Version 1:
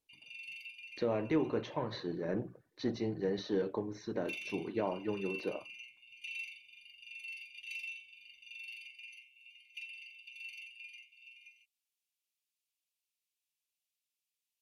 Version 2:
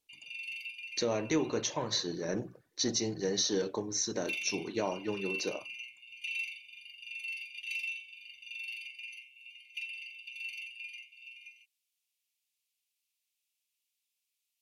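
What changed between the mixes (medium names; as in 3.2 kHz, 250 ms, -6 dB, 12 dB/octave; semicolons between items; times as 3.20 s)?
speech: remove distance through air 460 m; background +6.0 dB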